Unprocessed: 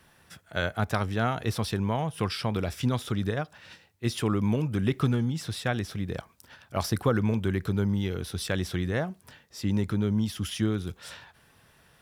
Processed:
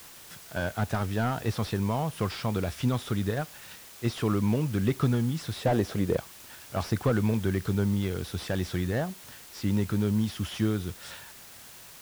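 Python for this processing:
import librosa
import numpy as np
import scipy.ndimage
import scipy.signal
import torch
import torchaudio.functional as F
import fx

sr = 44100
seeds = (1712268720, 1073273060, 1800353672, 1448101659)

y = fx.peak_eq(x, sr, hz=520.0, db=11.5, octaves=2.3, at=(5.61, 6.17))
y = fx.quant_dither(y, sr, seeds[0], bits=8, dither='triangular')
y = fx.slew_limit(y, sr, full_power_hz=55.0)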